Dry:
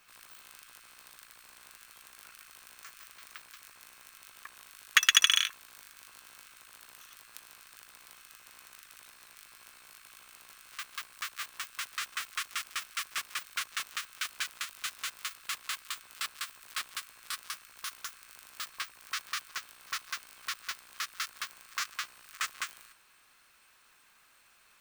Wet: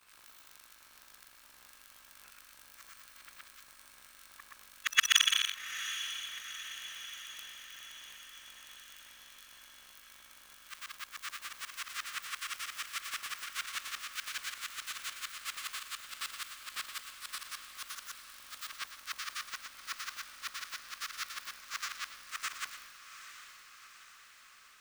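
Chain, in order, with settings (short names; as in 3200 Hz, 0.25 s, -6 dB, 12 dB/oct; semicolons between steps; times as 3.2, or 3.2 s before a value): short-time reversal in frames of 0.246 s; diffused feedback echo 0.799 s, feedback 59%, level -11 dB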